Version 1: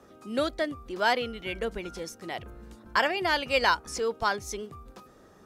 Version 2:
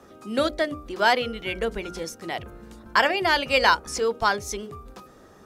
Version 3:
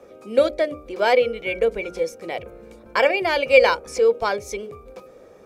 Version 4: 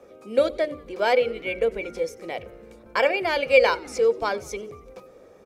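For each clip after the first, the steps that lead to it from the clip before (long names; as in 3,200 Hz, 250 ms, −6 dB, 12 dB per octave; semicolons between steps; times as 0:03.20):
mains-hum notches 60/120/180/240/300/360/420/480/540/600 Hz; level +5 dB
hollow resonant body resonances 510/2,300 Hz, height 16 dB, ringing for 25 ms; level −4 dB
echo with shifted repeats 92 ms, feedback 62%, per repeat −76 Hz, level −23 dB; level −3 dB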